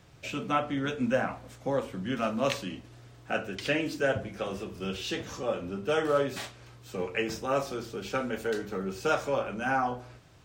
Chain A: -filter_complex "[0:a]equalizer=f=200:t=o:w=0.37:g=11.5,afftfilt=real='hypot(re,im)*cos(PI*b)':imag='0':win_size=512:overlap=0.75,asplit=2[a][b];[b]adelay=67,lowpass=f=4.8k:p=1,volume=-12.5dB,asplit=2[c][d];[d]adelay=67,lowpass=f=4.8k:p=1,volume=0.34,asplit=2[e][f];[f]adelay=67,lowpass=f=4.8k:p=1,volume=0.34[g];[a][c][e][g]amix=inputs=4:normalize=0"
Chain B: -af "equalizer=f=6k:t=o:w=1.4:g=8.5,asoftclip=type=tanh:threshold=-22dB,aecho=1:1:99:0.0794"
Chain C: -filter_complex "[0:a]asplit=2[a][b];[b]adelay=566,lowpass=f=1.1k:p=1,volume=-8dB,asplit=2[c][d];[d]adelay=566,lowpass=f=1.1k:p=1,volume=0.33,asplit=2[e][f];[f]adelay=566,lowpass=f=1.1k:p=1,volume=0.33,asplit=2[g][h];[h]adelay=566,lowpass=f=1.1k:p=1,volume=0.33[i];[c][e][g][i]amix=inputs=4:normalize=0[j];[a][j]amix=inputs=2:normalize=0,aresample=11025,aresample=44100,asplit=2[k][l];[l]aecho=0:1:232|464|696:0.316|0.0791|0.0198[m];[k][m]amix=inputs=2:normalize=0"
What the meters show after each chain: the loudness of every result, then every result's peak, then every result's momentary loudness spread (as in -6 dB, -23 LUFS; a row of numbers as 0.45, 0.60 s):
-34.5, -32.5, -31.0 LUFS; -13.5, -21.5, -12.5 dBFS; 8, 7, 7 LU